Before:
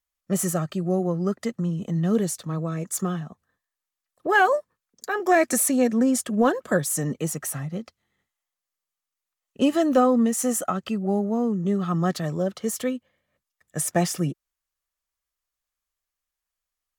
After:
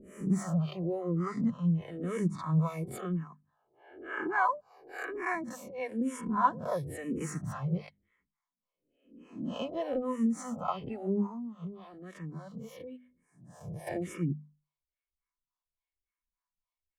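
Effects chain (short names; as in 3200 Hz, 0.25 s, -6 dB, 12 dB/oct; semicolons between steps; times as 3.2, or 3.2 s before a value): spectral swells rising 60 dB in 0.79 s; harmonic tremolo 3.5 Hz, depth 100%, crossover 480 Hz; notches 50/100/150/200/250 Hz; vocal rider within 5 dB 0.5 s; high shelf 11000 Hz -10.5 dB; small resonant body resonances 1000/2200 Hz, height 15 dB, ringing for 45 ms; 11.26–13.87 compressor 4:1, threshold -35 dBFS, peak gain reduction 12 dB; tone controls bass +8 dB, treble -9 dB; endless phaser -1 Hz; gain -6 dB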